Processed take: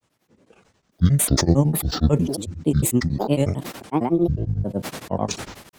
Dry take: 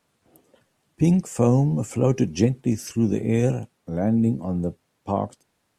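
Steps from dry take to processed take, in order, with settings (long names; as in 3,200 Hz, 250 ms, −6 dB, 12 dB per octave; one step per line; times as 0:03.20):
granular cloud, grains 11 per second, pitch spread up and down by 12 semitones
level that may fall only so fast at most 57 dB per second
level +3.5 dB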